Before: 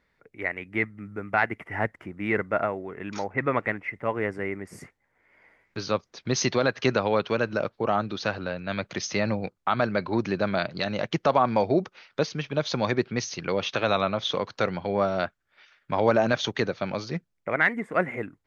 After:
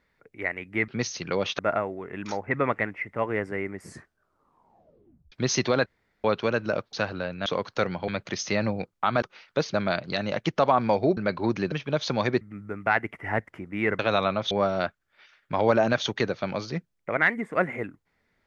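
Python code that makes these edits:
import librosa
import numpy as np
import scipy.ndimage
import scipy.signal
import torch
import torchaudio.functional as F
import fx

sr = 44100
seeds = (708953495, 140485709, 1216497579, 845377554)

y = fx.edit(x, sr, fx.swap(start_s=0.88, length_s=1.58, other_s=13.05, other_length_s=0.71),
    fx.tape_stop(start_s=4.69, length_s=1.5),
    fx.room_tone_fill(start_s=6.73, length_s=0.38),
    fx.cut(start_s=7.8, length_s=0.39),
    fx.swap(start_s=9.86, length_s=0.55, other_s=11.84, other_length_s=0.52),
    fx.move(start_s=14.28, length_s=0.62, to_s=8.72), tone=tone)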